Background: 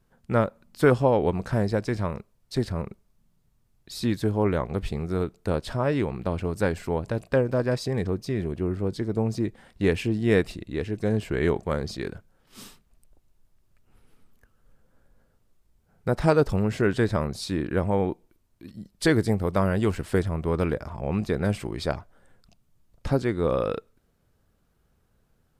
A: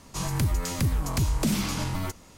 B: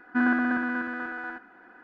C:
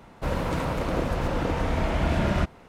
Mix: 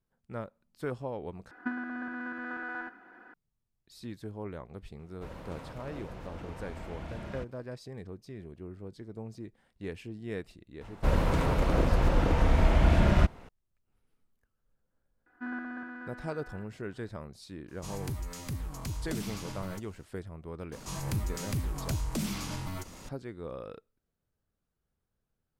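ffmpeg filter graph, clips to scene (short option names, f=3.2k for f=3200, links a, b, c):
-filter_complex "[2:a]asplit=2[a][b];[3:a]asplit=2[c][d];[1:a]asplit=2[e][f];[0:a]volume=-16.5dB[g];[a]acompressor=threshold=-33dB:ratio=16:attack=49:release=410:knee=1:detection=peak[h];[d]lowshelf=f=63:g=11[i];[f]acompressor=mode=upward:threshold=-27dB:ratio=2.5:attack=0.26:release=47:knee=2.83:detection=peak[j];[g]asplit=2[k][l];[k]atrim=end=1.514[m];[h]atrim=end=1.83,asetpts=PTS-STARTPTS,volume=-2dB[n];[l]atrim=start=3.336[o];[c]atrim=end=2.68,asetpts=PTS-STARTPTS,volume=-17.5dB,afade=t=in:d=0.004:c=hsin,afade=t=out:st=2.676:d=0.004:c=hsin,adelay=4990[p];[i]atrim=end=2.68,asetpts=PTS-STARTPTS,volume=-2dB,afade=t=in:d=0.004:c=hsin,afade=t=out:st=2.676:d=0.004:c=hsin,adelay=10810[q];[b]atrim=end=1.83,asetpts=PTS-STARTPTS,volume=-14.5dB,afade=t=in:d=0.004:c=hsin,afade=t=out:st=1.826:d=0.004:c=hsin,adelay=15260[r];[e]atrim=end=2.37,asetpts=PTS-STARTPTS,volume=-11.5dB,afade=t=in:d=0.004:c=hsin,afade=t=out:st=2.366:d=0.004:c=hsin,adelay=17680[s];[j]atrim=end=2.37,asetpts=PTS-STARTPTS,volume=-7.5dB,afade=t=in:d=0.004:c=hsin,afade=t=out:st=2.366:d=0.004:c=hsin,adelay=20720[t];[m][n]acrossfade=d=0.004:c1=hsin:c2=hsin[u];[u][o]acrossfade=d=0.004:c1=hsin:c2=hsin[v];[v][p][q][r][s][t]amix=inputs=6:normalize=0"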